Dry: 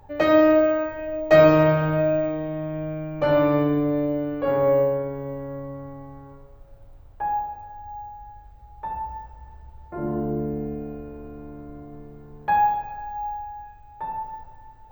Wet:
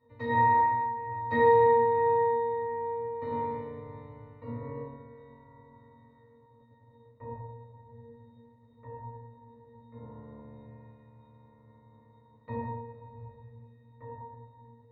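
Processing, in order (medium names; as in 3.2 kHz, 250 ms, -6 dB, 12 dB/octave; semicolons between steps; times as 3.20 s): spectral peaks clipped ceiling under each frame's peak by 27 dB; pitch-class resonator A#, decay 0.74 s; trim +7 dB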